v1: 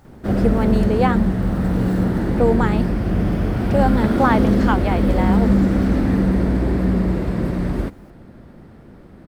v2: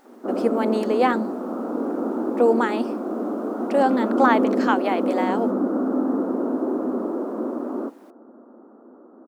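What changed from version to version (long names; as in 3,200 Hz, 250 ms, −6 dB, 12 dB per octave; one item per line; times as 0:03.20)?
background: add elliptic low-pass filter 1,300 Hz, stop band 50 dB
master: add linear-phase brick-wall high-pass 220 Hz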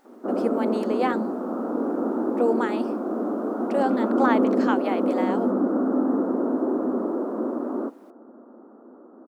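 speech −5.0 dB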